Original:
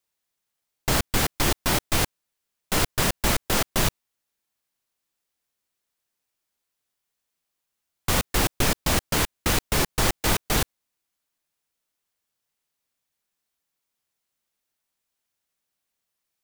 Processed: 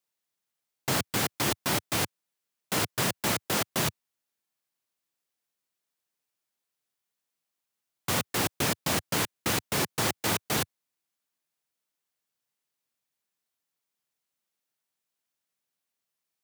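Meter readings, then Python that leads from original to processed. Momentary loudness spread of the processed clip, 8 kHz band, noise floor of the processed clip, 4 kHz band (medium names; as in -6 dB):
3 LU, -4.0 dB, under -85 dBFS, -4.0 dB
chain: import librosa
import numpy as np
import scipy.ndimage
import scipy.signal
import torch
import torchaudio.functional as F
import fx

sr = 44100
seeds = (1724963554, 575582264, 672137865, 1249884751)

y = scipy.signal.sosfilt(scipy.signal.butter(4, 100.0, 'highpass', fs=sr, output='sos'), x)
y = F.gain(torch.from_numpy(y), -4.0).numpy()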